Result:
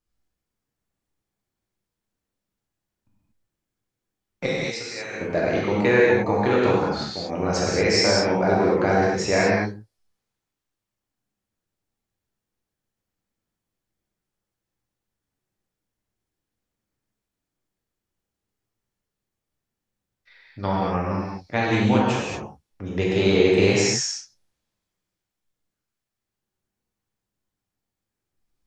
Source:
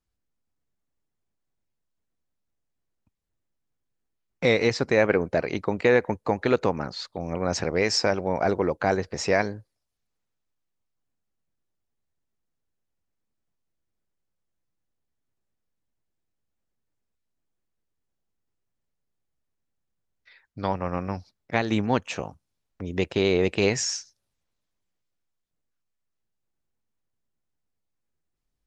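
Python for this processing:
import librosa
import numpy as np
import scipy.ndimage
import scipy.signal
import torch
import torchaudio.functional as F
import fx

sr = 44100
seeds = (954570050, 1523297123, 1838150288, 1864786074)

y = fx.pre_emphasis(x, sr, coefficient=0.9, at=(4.46, 5.21))
y = fx.rev_gated(y, sr, seeds[0], gate_ms=260, shape='flat', drr_db=-5.5)
y = F.gain(torch.from_numpy(y), -2.0).numpy()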